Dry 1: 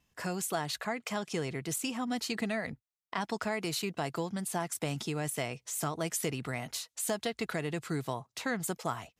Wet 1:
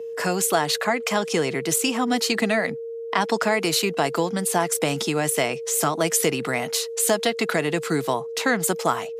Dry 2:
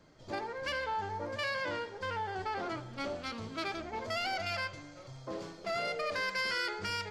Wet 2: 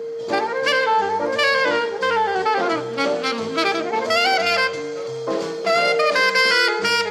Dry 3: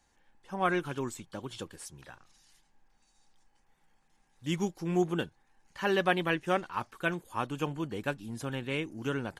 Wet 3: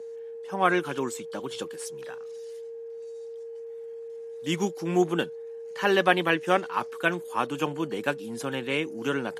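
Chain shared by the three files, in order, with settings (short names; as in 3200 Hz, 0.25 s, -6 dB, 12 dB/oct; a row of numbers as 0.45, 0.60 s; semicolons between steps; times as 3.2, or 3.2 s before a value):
whine 460 Hz -42 dBFS; Bessel high-pass 220 Hz, order 8; normalise peaks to -6 dBFS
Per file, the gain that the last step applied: +13.0, +17.0, +6.5 dB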